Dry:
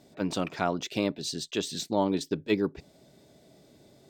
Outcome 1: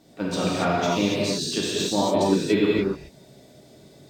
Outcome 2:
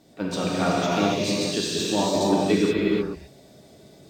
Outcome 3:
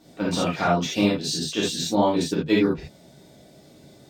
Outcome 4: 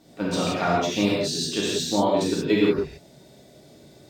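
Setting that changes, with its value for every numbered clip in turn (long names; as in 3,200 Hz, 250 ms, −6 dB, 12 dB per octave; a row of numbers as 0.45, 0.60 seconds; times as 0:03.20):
reverb whose tail is shaped and stops, gate: 310, 500, 100, 200 milliseconds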